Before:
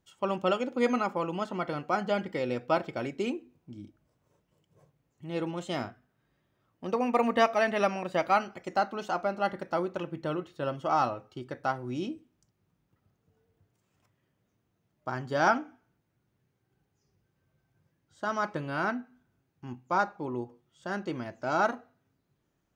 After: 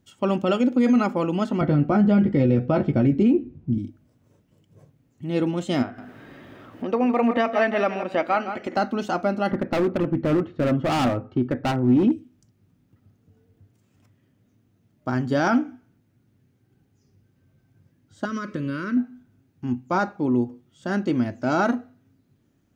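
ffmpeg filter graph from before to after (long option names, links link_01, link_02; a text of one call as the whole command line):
ffmpeg -i in.wav -filter_complex "[0:a]asettb=1/sr,asplit=3[link_01][link_02][link_03];[link_01]atrim=end=1.614[link_04];[link_02]atrim=start=1.61:end=3.78,asetpts=PTS-STARTPTS,afade=type=in:duration=0.004:curve=qsin,afade=type=out:start_time=2.166:duration=0.004:curve=qsin,aemphasis=mode=reproduction:type=riaa,asplit=2[link_05][link_06];[link_06]adelay=14,volume=-6dB[link_07];[link_05][link_07]amix=inputs=2:normalize=0,atrim=end_sample=95697[link_08];[link_03]atrim=start=3.776[link_09];[link_04][link_08]acrossfade=duration=0.004:curve1=hsin:curve2=qsin[link_10];[link_10][link_09]acrossfade=duration=0.004:curve1=qsin:curve2=hsin,asettb=1/sr,asplit=3[link_11][link_12][link_13];[link_11]atrim=end=5.824[link_14];[link_12]atrim=start=5.82:end=8.77,asetpts=PTS-STARTPTS,afade=type=in:duration=0.004:curve=qsin,afade=type=out:start_time=2.946:duration=0.004:curve=qsin,bass=frequency=250:gain=-14,treble=frequency=4000:gain=-13,acompressor=mode=upward:threshold=-32dB:ratio=2.5:attack=3.2:release=140:knee=2.83:detection=peak,aecho=1:1:164:0.251,atrim=end_sample=130095[link_15];[link_13]atrim=start=8.766[link_16];[link_14][link_15]acrossfade=duration=0.004:curve1=hsin:curve2=qsin[link_17];[link_17][link_16]acrossfade=duration=0.004:curve1=qsin:curve2=hsin,asettb=1/sr,asplit=3[link_18][link_19][link_20];[link_18]atrim=end=9.514[link_21];[link_19]atrim=start=9.51:end=12.12,asetpts=PTS-STARTPTS,afade=type=in:duration=0.004:curve=qsin,afade=type=out:start_time=2.606:duration=0.004:curve=qsin,lowpass=1700,acontrast=35,volume=26.5dB,asoftclip=hard,volume=-26.5dB[link_22];[link_20]atrim=start=12.116[link_23];[link_21][link_22]acrossfade=duration=0.004:curve1=hsin:curve2=qsin[link_24];[link_24][link_23]acrossfade=duration=0.004:curve1=qsin:curve2=hsin,asettb=1/sr,asplit=3[link_25][link_26][link_27];[link_25]atrim=end=18.254[link_28];[link_26]atrim=start=18.25:end=18.97,asetpts=PTS-STARTPTS,afade=type=in:duration=0.004:curve=qsin,afade=type=out:start_time=0.716:duration=0.004:curve=qsin,asuperstop=centerf=770:order=8:qfactor=1.9,acompressor=threshold=-35dB:ratio=3:attack=3.2:release=140:knee=1:detection=peak[link_29];[link_27]atrim=start=18.966[link_30];[link_28][link_29]acrossfade=duration=0.004:curve1=hsin:curve2=qsin[link_31];[link_31][link_30]acrossfade=duration=0.004:curve1=qsin:curve2=hsin,equalizer=frequency=100:width_type=o:width=0.67:gain=9,equalizer=frequency=250:width_type=o:width=0.67:gain=11,equalizer=frequency=1000:width_type=o:width=0.67:gain=-4,alimiter=limit=-17.5dB:level=0:latency=1:release=22,volume=6dB" out.wav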